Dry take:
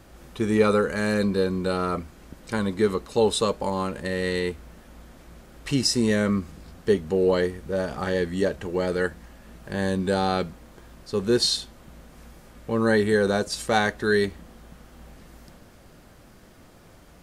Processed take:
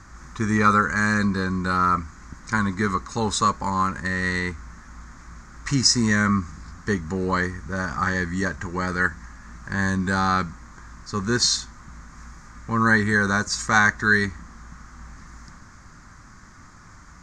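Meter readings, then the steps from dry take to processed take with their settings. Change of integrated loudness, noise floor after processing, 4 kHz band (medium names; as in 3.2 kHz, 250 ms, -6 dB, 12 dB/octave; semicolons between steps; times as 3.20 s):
+2.0 dB, -47 dBFS, +2.0 dB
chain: FFT filter 100 Hz 0 dB, 270 Hz -5 dB, 480 Hz -16 dB, 690 Hz -12 dB, 1.1 kHz +6 dB, 2 kHz +2 dB, 2.9 kHz -14 dB, 6.7 kHz +6 dB, 11 kHz -23 dB; trim +5.5 dB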